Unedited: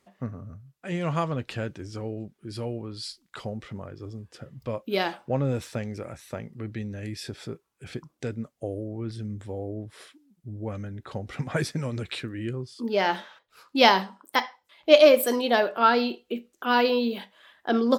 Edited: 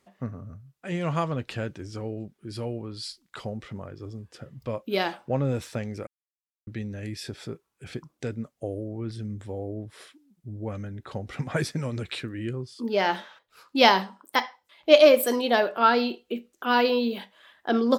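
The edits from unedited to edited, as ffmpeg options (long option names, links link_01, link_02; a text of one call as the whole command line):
ffmpeg -i in.wav -filter_complex "[0:a]asplit=3[link_01][link_02][link_03];[link_01]atrim=end=6.07,asetpts=PTS-STARTPTS,afade=type=out:start_time=6.066:duration=0.004:curve=hsin[link_04];[link_02]atrim=start=6.07:end=6.67,asetpts=PTS-STARTPTS,volume=0[link_05];[link_03]atrim=start=6.67,asetpts=PTS-STARTPTS,afade=type=in:duration=0.004:curve=hsin[link_06];[link_04][link_05][link_06]concat=n=3:v=0:a=1" out.wav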